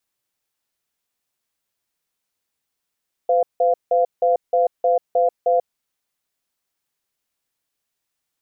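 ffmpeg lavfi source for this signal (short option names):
-f lavfi -i "aevalsrc='0.15*(sin(2*PI*509*t)+sin(2*PI*695*t))*clip(min(mod(t,0.31),0.14-mod(t,0.31))/0.005,0,1)':d=2.4:s=44100"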